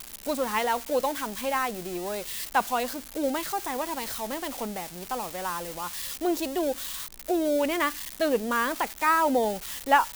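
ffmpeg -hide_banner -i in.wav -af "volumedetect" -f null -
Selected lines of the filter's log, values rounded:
mean_volume: -28.3 dB
max_volume: -7.5 dB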